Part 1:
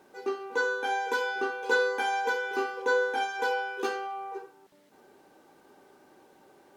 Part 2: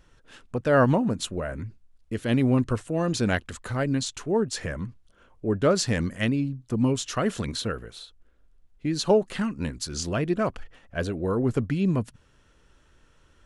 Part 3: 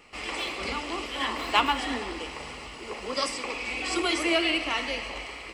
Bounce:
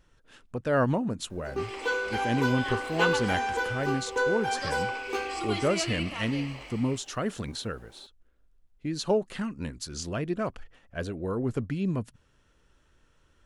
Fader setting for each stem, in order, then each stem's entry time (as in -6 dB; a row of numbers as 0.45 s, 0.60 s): -1.0 dB, -5.0 dB, -8.5 dB; 1.30 s, 0.00 s, 1.45 s